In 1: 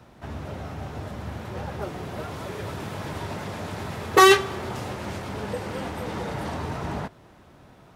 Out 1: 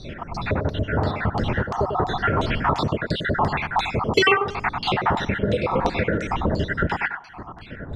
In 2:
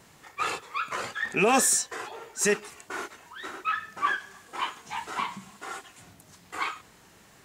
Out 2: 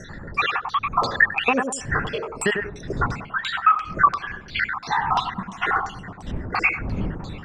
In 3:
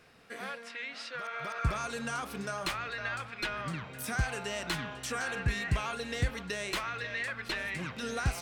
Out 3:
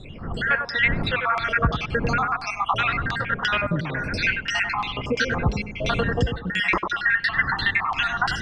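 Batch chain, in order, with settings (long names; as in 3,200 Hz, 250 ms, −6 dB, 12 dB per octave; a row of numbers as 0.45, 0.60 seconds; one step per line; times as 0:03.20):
time-frequency cells dropped at random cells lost 73%
wind on the microphone 160 Hz −49 dBFS
downward compressor 4 to 1, threshold −38 dBFS
on a send: tape delay 97 ms, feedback 32%, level −5 dB, low-pass 1,900 Hz
on the sum: auto-filter low-pass saw down 2.9 Hz 880–5,100 Hz
loudness normalisation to −23 LKFS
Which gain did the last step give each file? +17.5, +16.5, +17.5 decibels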